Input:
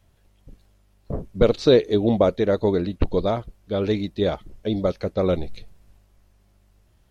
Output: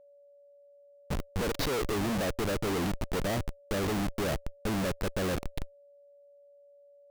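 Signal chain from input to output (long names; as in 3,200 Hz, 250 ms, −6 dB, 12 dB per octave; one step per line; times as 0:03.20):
comparator with hysteresis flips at −31.5 dBFS
steady tone 570 Hz −49 dBFS
level −6 dB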